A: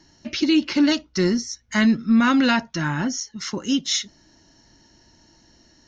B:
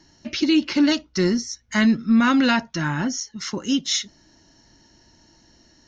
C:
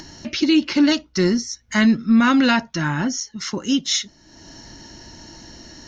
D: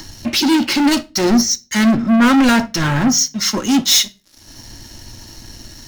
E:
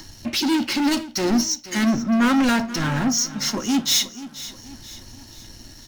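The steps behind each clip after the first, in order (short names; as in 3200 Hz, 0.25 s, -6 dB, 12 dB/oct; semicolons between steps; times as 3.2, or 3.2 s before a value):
nothing audible
upward compressor, threshold -31 dBFS; gain +2 dB
sample leveller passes 5; reverb RT60 0.40 s, pre-delay 4 ms, DRR 10 dB; three-band expander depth 70%; gain -5 dB
feedback echo 0.482 s, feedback 47%, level -15.5 dB; gain -6.5 dB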